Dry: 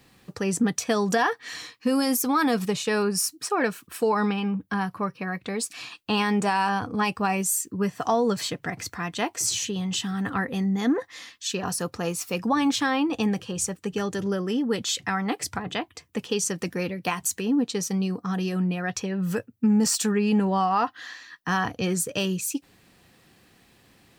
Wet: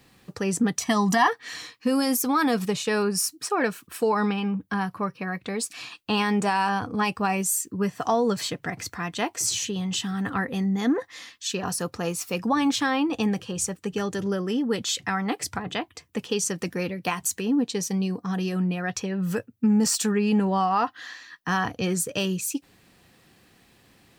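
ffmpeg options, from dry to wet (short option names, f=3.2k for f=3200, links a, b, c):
-filter_complex "[0:a]asettb=1/sr,asplit=3[a][b][c];[a]atrim=end=0.814[d];[b]atrim=start=0.81:end=1.28,asetpts=PTS-STARTPTS,afade=t=in:d=0.004:c=qsin,afade=t=out:st=0.466:d=0.004:c=qsin,aecho=1:1:1:0.98,atrim=end_sample=20727[e];[c]atrim=start=1.276[f];[d][e]acrossfade=d=0.004:c1=hsin:c2=qsin[g];[g][f]acrossfade=d=0.004:c1=qsin:c2=hsin,asettb=1/sr,asplit=3[h][i][j];[h]atrim=end=17.644[k];[i]atrim=start=17.64:end=18.33,asetpts=PTS-STARTPTS,afade=t=in:d=0.004:c=qsin,afade=t=out:st=0.686:d=0.004:c=qsin,bandreject=f=1.3k:w=7.1[l];[j]atrim=start=18.326[m];[k][l]acrossfade=d=0.004:c1=hsin:c2=qsin[n];[n][m]acrossfade=d=0.004:c1=qsin:c2=hsin"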